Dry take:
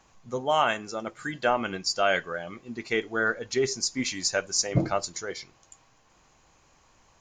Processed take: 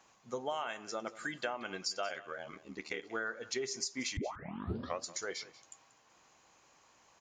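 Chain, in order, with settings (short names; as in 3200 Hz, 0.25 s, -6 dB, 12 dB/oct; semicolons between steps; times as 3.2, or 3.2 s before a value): HPF 350 Hz 6 dB/oct; compressor 10:1, threshold -31 dBFS, peak gain reduction 13 dB; 2.08–3.03 ring modulator 38 Hz; 4.17 tape start 0.87 s; echo 0.185 s -18 dB; gain -2.5 dB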